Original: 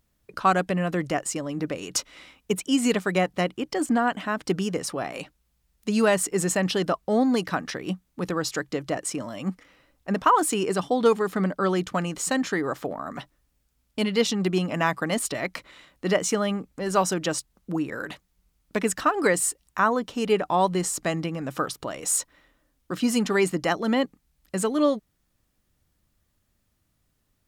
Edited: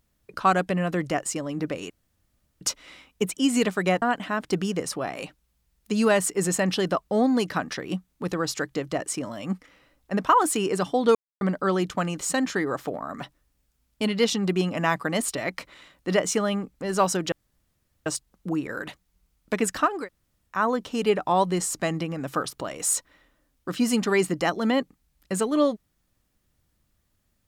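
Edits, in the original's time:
1.90 s: insert room tone 0.71 s
3.31–3.99 s: delete
11.12–11.38 s: mute
17.29 s: insert room tone 0.74 s
19.20–19.79 s: room tone, crossfade 0.24 s

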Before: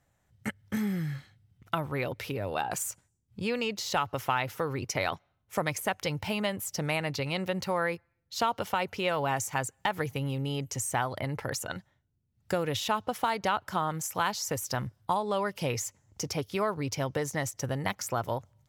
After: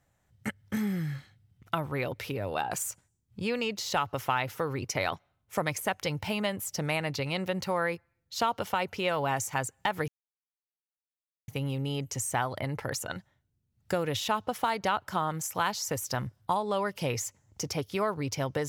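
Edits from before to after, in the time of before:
10.08 s: insert silence 1.40 s

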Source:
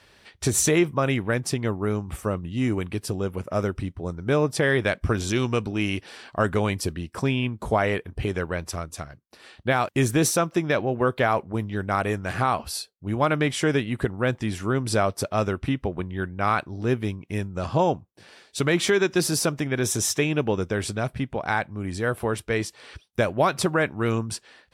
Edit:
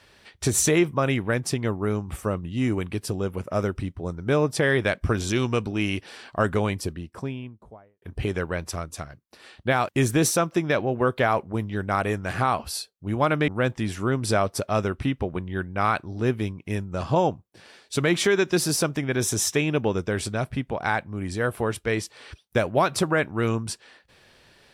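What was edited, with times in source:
6.41–8.02 s: studio fade out
13.48–14.11 s: delete

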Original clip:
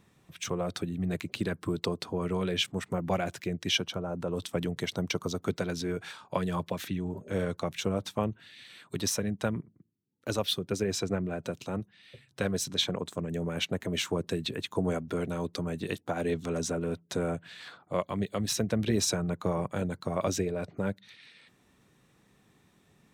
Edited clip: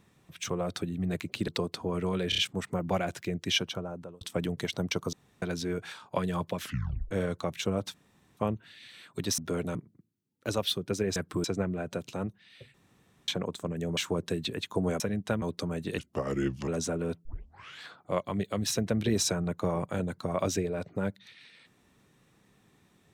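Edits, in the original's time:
1.48–1.76 s: move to 10.97 s
2.57 s: stutter 0.03 s, 4 plays
3.92–4.40 s: fade out
5.32–5.61 s: room tone
6.78 s: tape stop 0.52 s
8.13 s: insert room tone 0.43 s
9.14–9.56 s: swap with 15.01–15.38 s
12.27–12.81 s: room tone
13.50–13.98 s: delete
15.94–16.50 s: speed 80%
17.07 s: tape start 0.57 s

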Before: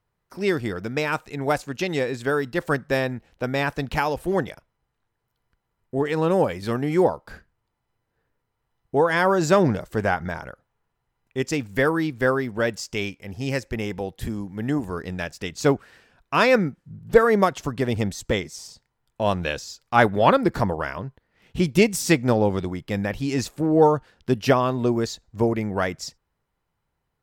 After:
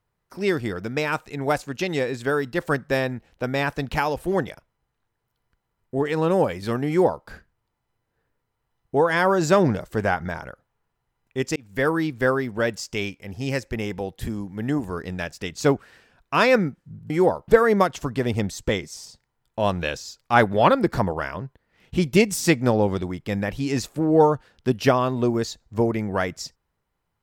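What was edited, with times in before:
6.88–7.26 s: copy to 17.10 s
11.56–11.89 s: fade in

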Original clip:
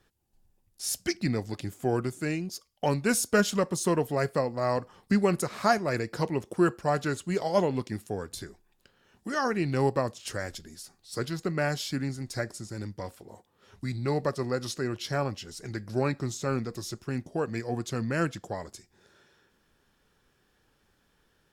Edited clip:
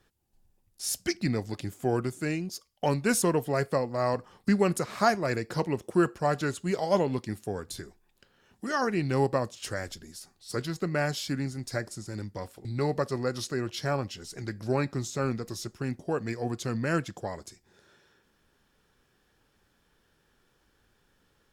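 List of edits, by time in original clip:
3.22–3.85 s: delete
13.28–13.92 s: delete

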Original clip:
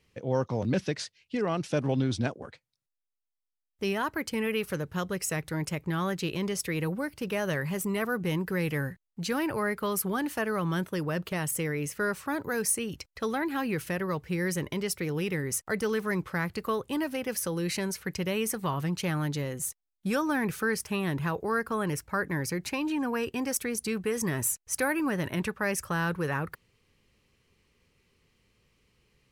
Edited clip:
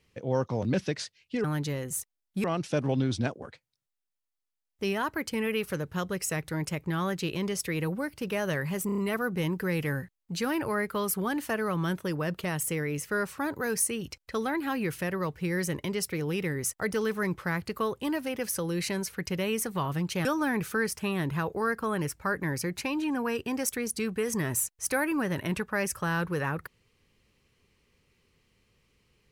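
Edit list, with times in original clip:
7.86 s: stutter 0.03 s, 5 plays
19.13–20.13 s: move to 1.44 s

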